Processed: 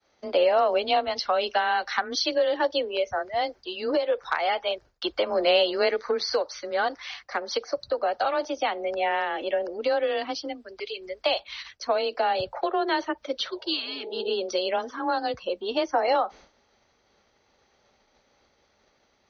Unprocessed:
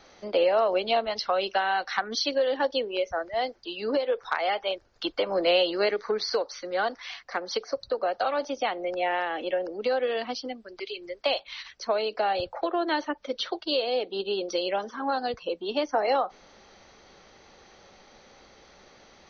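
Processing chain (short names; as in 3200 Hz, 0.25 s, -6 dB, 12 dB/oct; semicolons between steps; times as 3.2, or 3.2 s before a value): expander -44 dBFS; spectral repair 13.52–14.27, 370–960 Hz both; frequency shift +22 Hz; gain +1.5 dB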